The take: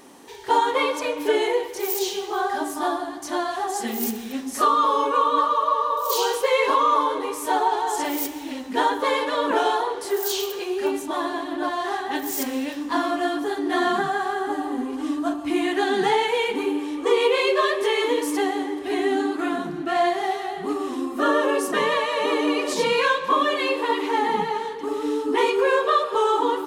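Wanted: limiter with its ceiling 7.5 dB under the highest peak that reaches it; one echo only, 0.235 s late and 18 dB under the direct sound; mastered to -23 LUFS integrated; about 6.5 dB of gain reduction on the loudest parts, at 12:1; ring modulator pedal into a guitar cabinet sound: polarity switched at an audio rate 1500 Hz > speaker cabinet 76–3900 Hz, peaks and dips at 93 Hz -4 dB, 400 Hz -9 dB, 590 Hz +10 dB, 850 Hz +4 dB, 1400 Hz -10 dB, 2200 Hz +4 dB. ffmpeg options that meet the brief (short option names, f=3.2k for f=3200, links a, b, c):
-af "acompressor=threshold=-21dB:ratio=12,alimiter=limit=-19.5dB:level=0:latency=1,aecho=1:1:235:0.126,aeval=exprs='val(0)*sgn(sin(2*PI*1500*n/s))':c=same,highpass=76,equalizer=f=93:t=q:w=4:g=-4,equalizer=f=400:t=q:w=4:g=-9,equalizer=f=590:t=q:w=4:g=10,equalizer=f=850:t=q:w=4:g=4,equalizer=f=1.4k:t=q:w=4:g=-10,equalizer=f=2.2k:t=q:w=4:g=4,lowpass=f=3.9k:w=0.5412,lowpass=f=3.9k:w=1.3066,volume=3.5dB"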